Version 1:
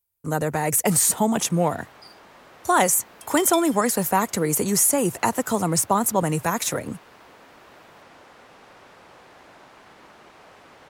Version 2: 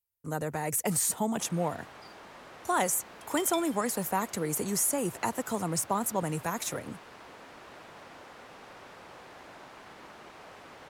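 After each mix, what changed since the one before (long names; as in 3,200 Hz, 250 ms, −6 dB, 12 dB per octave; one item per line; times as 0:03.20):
speech −9.0 dB
second sound: add spectral tilt −4 dB per octave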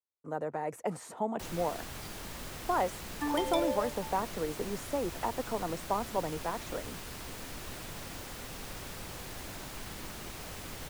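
speech: add resonant band-pass 600 Hz, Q 0.79
first sound: remove resonant band-pass 900 Hz, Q 0.68
second sound: remove linear-phase brick-wall high-pass 2,100 Hz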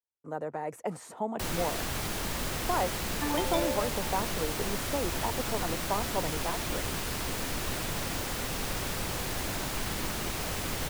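first sound +9.5 dB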